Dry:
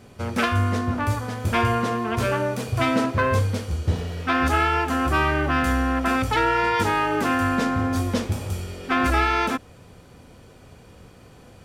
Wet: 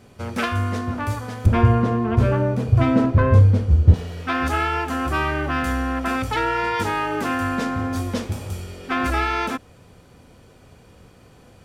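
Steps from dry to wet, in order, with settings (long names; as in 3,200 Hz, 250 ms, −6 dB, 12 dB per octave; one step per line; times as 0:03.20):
0:01.46–0:03.94: spectral tilt −3.5 dB per octave
level −1.5 dB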